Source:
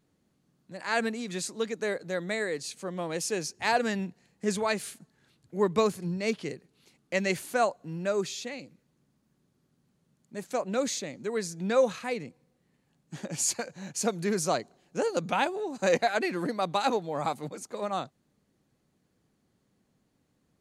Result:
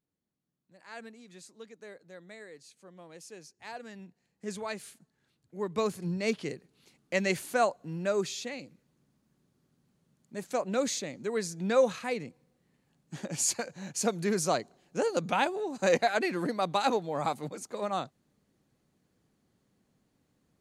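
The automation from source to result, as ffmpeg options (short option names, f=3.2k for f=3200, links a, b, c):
-af "volume=-0.5dB,afade=t=in:st=3.9:d=0.65:silence=0.375837,afade=t=in:st=5.67:d=0.43:silence=0.398107"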